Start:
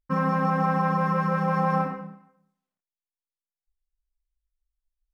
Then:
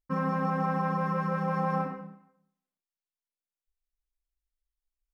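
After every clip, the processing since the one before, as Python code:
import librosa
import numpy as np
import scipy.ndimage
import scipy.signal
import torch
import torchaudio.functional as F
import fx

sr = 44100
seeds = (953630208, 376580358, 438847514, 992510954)

y = fx.peak_eq(x, sr, hz=330.0, db=3.5, octaves=1.2)
y = F.gain(torch.from_numpy(y), -6.0).numpy()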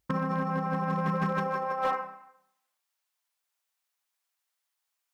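y = fx.over_compress(x, sr, threshold_db=-33.0, ratio=-0.5)
y = fx.filter_sweep_highpass(y, sr, from_hz=69.0, to_hz=830.0, start_s=0.74, end_s=2.0, q=1.1)
y = np.clip(10.0 ** (28.5 / 20.0) * y, -1.0, 1.0) / 10.0 ** (28.5 / 20.0)
y = F.gain(torch.from_numpy(y), 6.5).numpy()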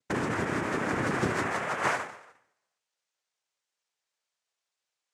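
y = fx.noise_vocoder(x, sr, seeds[0], bands=3)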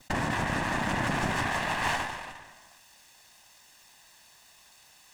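y = fx.lower_of_two(x, sr, delay_ms=1.1)
y = fx.env_flatten(y, sr, amount_pct=50)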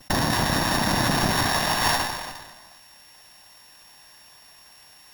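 y = np.r_[np.sort(x[:len(x) // 8 * 8].reshape(-1, 8), axis=1).ravel(), x[len(x) // 8 * 8:]]
y = F.gain(torch.from_numpy(y), 6.5).numpy()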